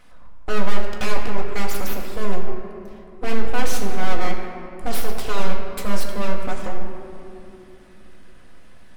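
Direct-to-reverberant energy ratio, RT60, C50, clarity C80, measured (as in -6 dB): -0.5 dB, 2.7 s, 4.0 dB, 5.0 dB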